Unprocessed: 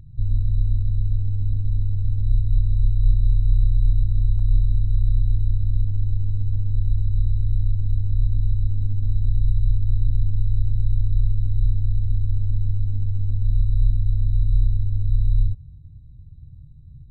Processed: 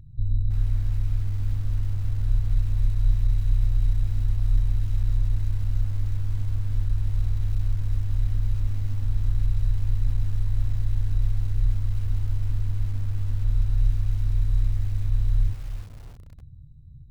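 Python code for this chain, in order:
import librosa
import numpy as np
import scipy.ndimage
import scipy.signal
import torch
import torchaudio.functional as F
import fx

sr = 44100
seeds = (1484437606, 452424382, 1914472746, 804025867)

y = fx.echo_crushed(x, sr, ms=327, feedback_pct=35, bits=6, wet_db=-11.5)
y = F.gain(torch.from_numpy(y), -3.0).numpy()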